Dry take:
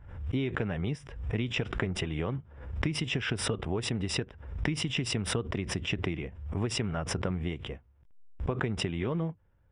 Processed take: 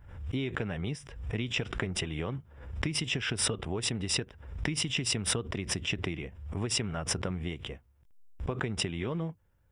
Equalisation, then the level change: high shelf 4000 Hz +11 dB; -2.5 dB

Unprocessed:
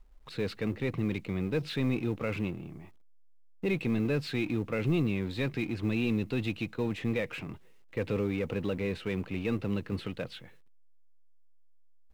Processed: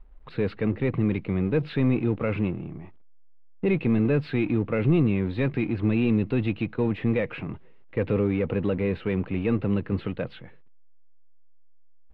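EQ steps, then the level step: air absorption 430 m; +7.5 dB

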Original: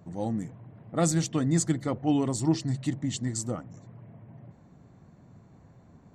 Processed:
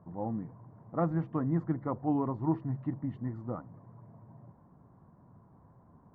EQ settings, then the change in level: LPF 1500 Hz 24 dB/oct; bell 1000 Hz +9 dB 0.46 oct; -5.0 dB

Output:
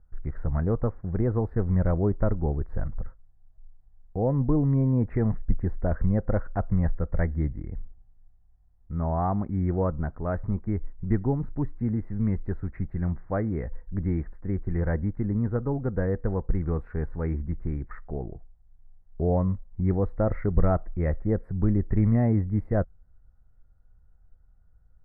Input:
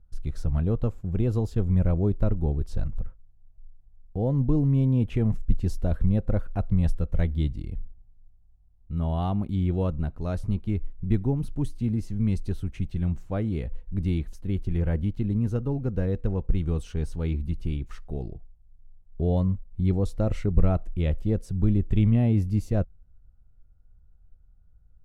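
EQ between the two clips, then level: elliptic low-pass 1900 Hz, stop band 40 dB; low shelf 490 Hz -8.5 dB; +7.5 dB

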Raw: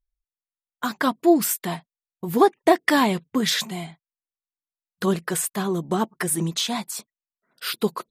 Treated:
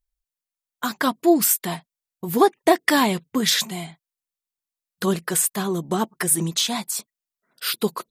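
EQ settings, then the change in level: high shelf 4200 Hz +6.5 dB; 0.0 dB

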